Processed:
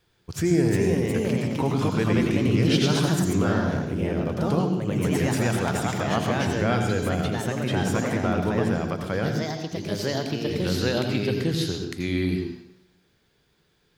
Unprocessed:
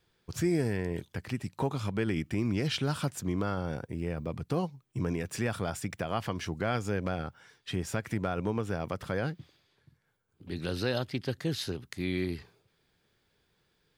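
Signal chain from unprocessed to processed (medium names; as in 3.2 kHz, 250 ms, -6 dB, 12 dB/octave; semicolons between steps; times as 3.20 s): ever faster or slower copies 398 ms, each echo +2 st, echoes 2; on a send: reverberation RT60 0.70 s, pre-delay 77 ms, DRR 5.5 dB; on the sum: trim +4.5 dB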